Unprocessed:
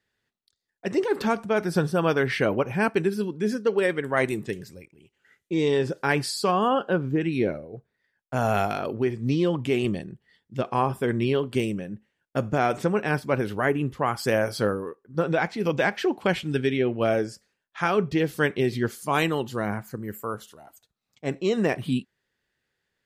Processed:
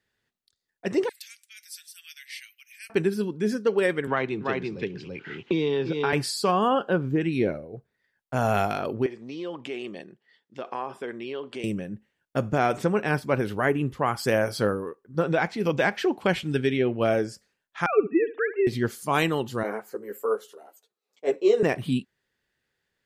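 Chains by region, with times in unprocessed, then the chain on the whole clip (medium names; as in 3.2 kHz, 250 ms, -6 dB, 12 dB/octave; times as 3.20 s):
1.09–2.90 s: elliptic high-pass 2 kHz, stop band 70 dB + differentiator
4.07–6.13 s: cabinet simulation 140–4400 Hz, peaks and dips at 220 Hz -4 dB, 330 Hz -3 dB, 590 Hz -8 dB, 1.9 kHz -6 dB + delay 337 ms -6 dB + three bands compressed up and down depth 100%
9.06–11.64 s: compression 3:1, threshold -28 dBFS + band-pass 360–5900 Hz
17.86–18.67 s: formants replaced by sine waves + flutter echo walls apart 11.9 m, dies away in 0.28 s
19.63–21.63 s: resonant high-pass 430 Hz, resonance Q 3.8 + three-phase chorus
whole clip: none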